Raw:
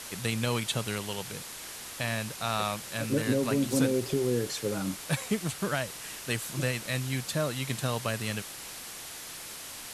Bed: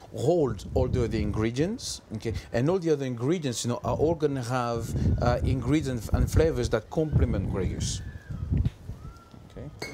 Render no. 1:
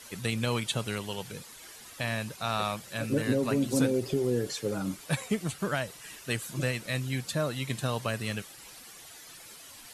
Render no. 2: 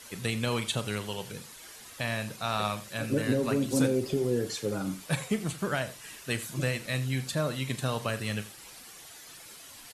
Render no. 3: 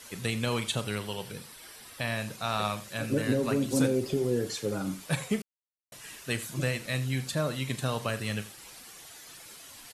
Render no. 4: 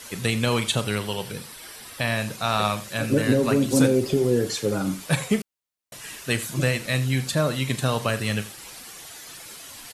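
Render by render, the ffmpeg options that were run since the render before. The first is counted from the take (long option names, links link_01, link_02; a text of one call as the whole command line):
ffmpeg -i in.wav -af "afftdn=noise_reduction=11:noise_floor=-43" out.wav
ffmpeg -i in.wav -filter_complex "[0:a]asplit=2[link_01][link_02];[link_02]adelay=38,volume=-13.5dB[link_03];[link_01][link_03]amix=inputs=2:normalize=0,aecho=1:1:85:0.158" out.wav
ffmpeg -i in.wav -filter_complex "[0:a]asettb=1/sr,asplit=3[link_01][link_02][link_03];[link_01]atrim=end=0.844[link_04];[link_02]atrim=start=0.84:end=2.17,asetpts=PTS-STARTPTS,afade=type=in:duration=0.004:curve=qsin,afade=type=out:start_time=1.326:duration=0.004:curve=qsin,bandreject=frequency=6700:width=5.3[link_05];[link_03]atrim=start=2.166[link_06];[link_04][link_05]acrossfade=duration=0.004:curve1=hsin:curve2=qsin[link_07];[link_07][link_06]acrossfade=duration=0.004:curve1=qsin:curve2=hsin,asplit=3[link_08][link_09][link_10];[link_08]atrim=end=5.42,asetpts=PTS-STARTPTS,afade=type=out:start_time=5.416:duration=0.004:curve=hsin[link_11];[link_09]atrim=start=5.42:end=5.92,asetpts=PTS-STARTPTS,volume=0[link_12];[link_10]atrim=start=5.92,asetpts=PTS-STARTPTS,afade=type=in:duration=0.004:curve=hsin[link_13];[link_11][link_12][link_13]concat=n=3:v=0:a=1" out.wav
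ffmpeg -i in.wav -af "volume=7dB" out.wav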